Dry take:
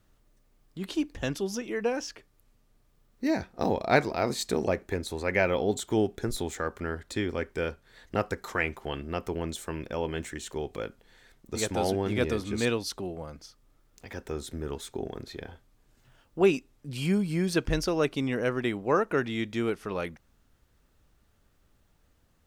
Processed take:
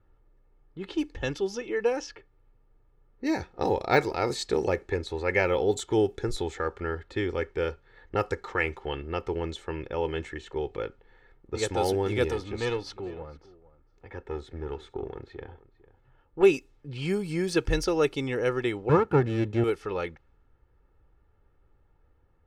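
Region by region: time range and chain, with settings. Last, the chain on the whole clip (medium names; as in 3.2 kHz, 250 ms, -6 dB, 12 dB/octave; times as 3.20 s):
12.28–16.43 s: valve stage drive 22 dB, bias 0.5 + delay 451 ms -18.5 dB
18.89–19.64 s: comb filter that takes the minimum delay 0.7 ms + high-pass 96 Hz 24 dB/octave + tilt EQ -4 dB/octave
whole clip: level-controlled noise filter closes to 1.5 kHz, open at -22.5 dBFS; de-esser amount 60%; comb 2.3 ms, depth 55%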